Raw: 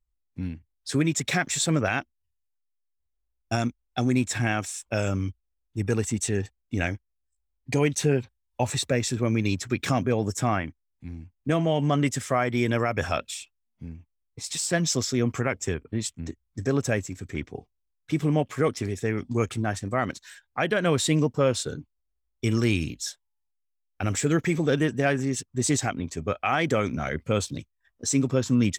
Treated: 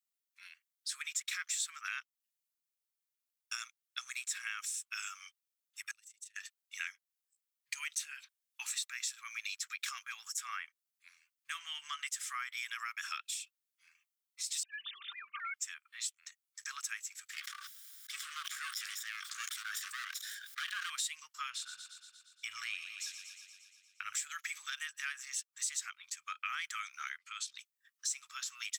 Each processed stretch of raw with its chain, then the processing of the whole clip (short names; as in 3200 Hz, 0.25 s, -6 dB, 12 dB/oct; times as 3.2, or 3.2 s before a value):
5.91–6.36 passive tone stack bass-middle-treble 10-0-1 + AM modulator 25 Hz, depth 55%
14.63–15.54 sine-wave speech + comb 5.1 ms, depth 63% + compressor 4:1, threshold -24 dBFS
17.3–20.9 minimum comb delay 0.57 ms + rippled Chebyshev high-pass 1100 Hz, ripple 3 dB + sustainer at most 27 dB/s
21.5–24.13 tone controls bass +13 dB, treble -11 dB + thinning echo 0.117 s, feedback 69%, high-pass 410 Hz, level -11 dB
27.18–27.58 LPF 7500 Hz + compressor 3:1, threshold -28 dBFS
whole clip: elliptic high-pass 1200 Hz, stop band 50 dB; tilt +3 dB/oct; compressor 2.5:1, threshold -36 dBFS; gain -4 dB